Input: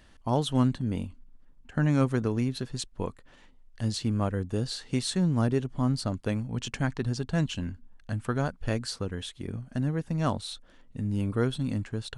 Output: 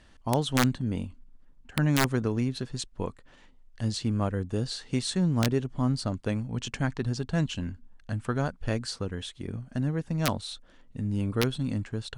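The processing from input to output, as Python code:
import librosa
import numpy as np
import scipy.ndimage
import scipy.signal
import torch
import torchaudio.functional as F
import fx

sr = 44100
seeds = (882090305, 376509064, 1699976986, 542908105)

y = scipy.signal.sosfilt(scipy.signal.butter(4, 10000.0, 'lowpass', fs=sr, output='sos'), x)
y = (np.mod(10.0 ** (13.5 / 20.0) * y + 1.0, 2.0) - 1.0) / 10.0 ** (13.5 / 20.0)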